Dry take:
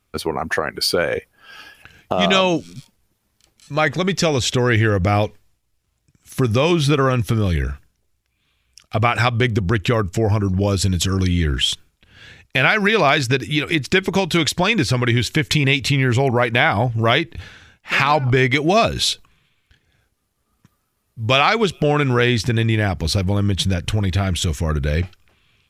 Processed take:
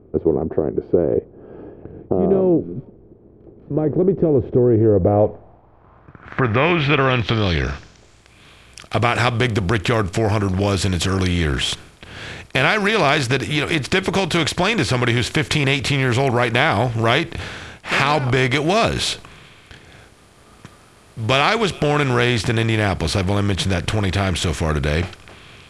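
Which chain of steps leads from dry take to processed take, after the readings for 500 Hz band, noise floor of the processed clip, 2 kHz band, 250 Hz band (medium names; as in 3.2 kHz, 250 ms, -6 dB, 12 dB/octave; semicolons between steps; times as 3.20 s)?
+1.5 dB, -49 dBFS, -0.5 dB, +1.0 dB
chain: spectral levelling over time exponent 0.6; treble shelf 5.7 kHz -9 dB; low-pass sweep 390 Hz -> 10 kHz, 4.79–8.41 s; trim -4 dB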